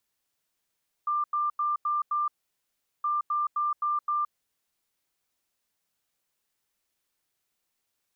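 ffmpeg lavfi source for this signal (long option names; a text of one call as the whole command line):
ffmpeg -f lavfi -i "aevalsrc='0.0631*sin(2*PI*1190*t)*clip(min(mod(mod(t,1.97),0.26),0.17-mod(mod(t,1.97),0.26))/0.005,0,1)*lt(mod(t,1.97),1.3)':duration=3.94:sample_rate=44100" out.wav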